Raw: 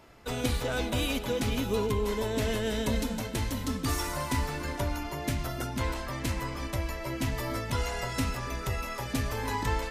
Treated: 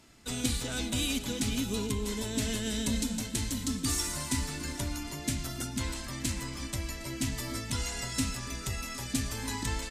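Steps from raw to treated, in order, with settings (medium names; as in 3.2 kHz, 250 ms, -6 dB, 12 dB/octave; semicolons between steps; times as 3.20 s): graphic EQ 250/500/1000/4000/8000 Hz +6/-7/-4/+4/+12 dB; on a send: delay 759 ms -20 dB; on the sum: trim -4 dB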